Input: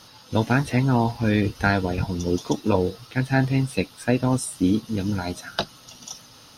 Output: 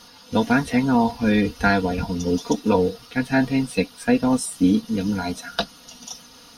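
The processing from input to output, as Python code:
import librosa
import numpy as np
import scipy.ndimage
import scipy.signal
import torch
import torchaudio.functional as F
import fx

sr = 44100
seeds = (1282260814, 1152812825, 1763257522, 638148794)

y = x + 0.72 * np.pad(x, (int(4.2 * sr / 1000.0), 0))[:len(x)]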